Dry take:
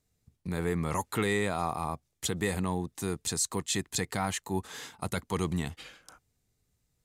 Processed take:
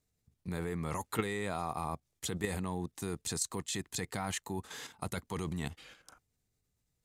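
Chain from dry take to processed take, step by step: level held to a coarse grid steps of 9 dB

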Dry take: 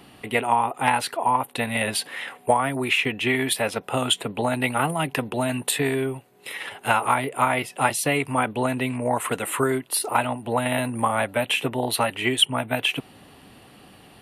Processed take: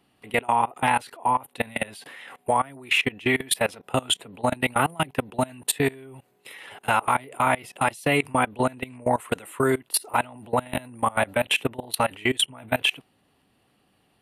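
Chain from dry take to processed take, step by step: level held to a coarse grid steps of 23 dB; trim +3 dB

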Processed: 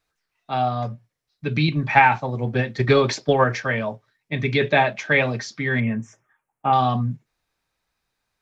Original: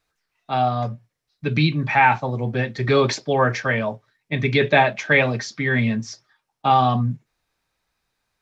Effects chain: 1.68–3.60 s: transient shaper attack +8 dB, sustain +1 dB; 5.80–6.73 s: Butterworth band-stop 4.4 kHz, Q 0.85; trim -2 dB

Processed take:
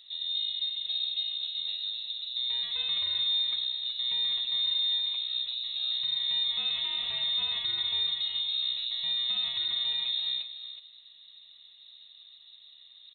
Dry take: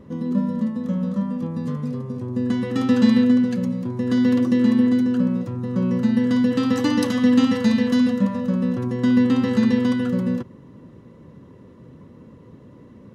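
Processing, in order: peak limiter -15.5 dBFS, peak gain reduction 10.5 dB; delay 371 ms -10.5 dB; frequency inversion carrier 3.9 kHz; trim -9 dB

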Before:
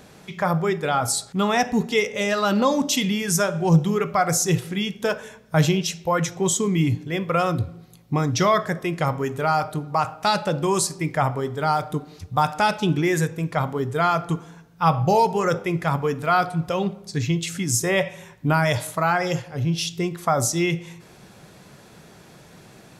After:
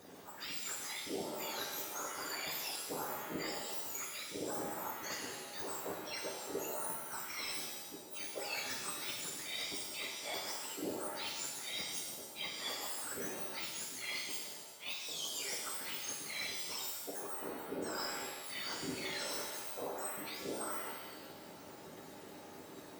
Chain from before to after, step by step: spectrum inverted on a logarithmic axis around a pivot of 1.7 kHz; reverse; compression 12:1, threshold -34 dBFS, peak gain reduction 23 dB; reverse; whisper effect; pitch-shifted reverb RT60 1.1 s, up +7 st, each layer -2 dB, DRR 1 dB; trim -7.5 dB

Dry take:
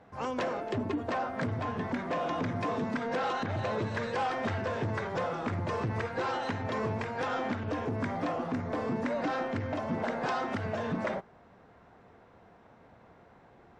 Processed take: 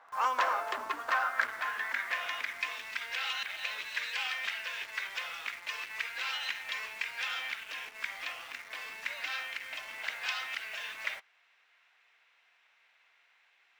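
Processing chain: high-pass sweep 1.1 kHz -> 2.5 kHz, 0.63–2.86 s; in parallel at -6 dB: bit crusher 8-bit

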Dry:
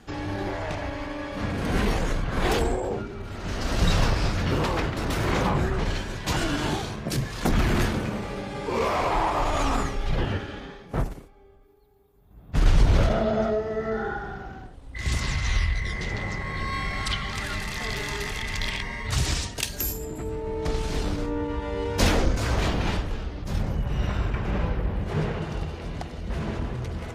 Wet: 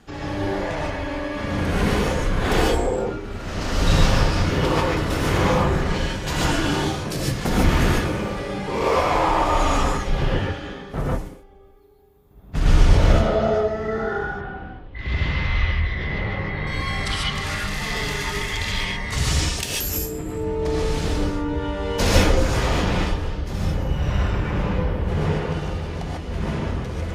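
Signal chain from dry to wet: 14.25–16.67 s: low-pass 3.5 kHz 24 dB/octave; gated-style reverb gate 170 ms rising, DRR -4.5 dB; trim -1 dB

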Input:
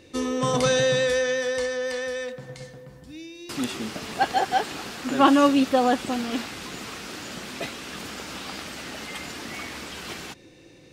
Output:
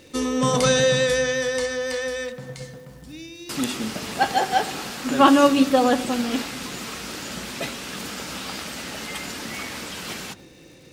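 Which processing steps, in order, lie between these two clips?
treble shelf 6.4 kHz +6 dB; crackle 330 per s -47 dBFS; on a send: reverberation RT60 1.1 s, pre-delay 3 ms, DRR 12 dB; on the sum: trim +2 dB

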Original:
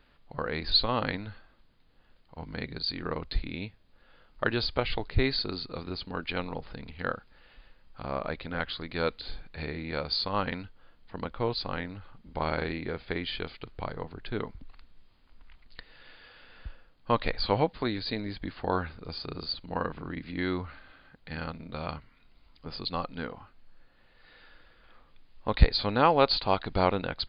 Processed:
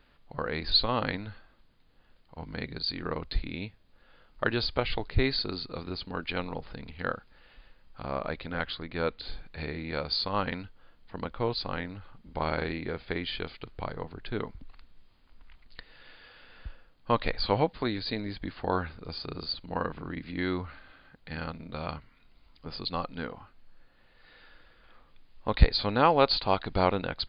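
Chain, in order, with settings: 8.75–9.20 s: distance through air 180 m

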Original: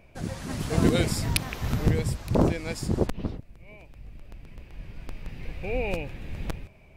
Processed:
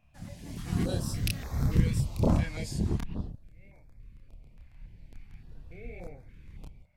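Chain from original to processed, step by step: Doppler pass-by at 2.17 s, 26 m/s, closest 23 m; chorus voices 6, 0.3 Hz, delay 29 ms, depth 1 ms; step-sequenced notch 3.5 Hz 410–2900 Hz

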